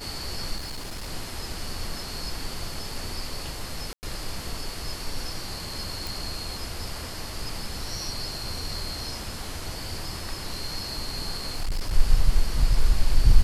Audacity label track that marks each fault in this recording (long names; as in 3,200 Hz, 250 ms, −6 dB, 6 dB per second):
0.560000	1.090000	clipping −30.5 dBFS
3.930000	4.030000	drop-out 99 ms
6.070000	6.070000	click
11.300000	11.940000	clipping −22.5 dBFS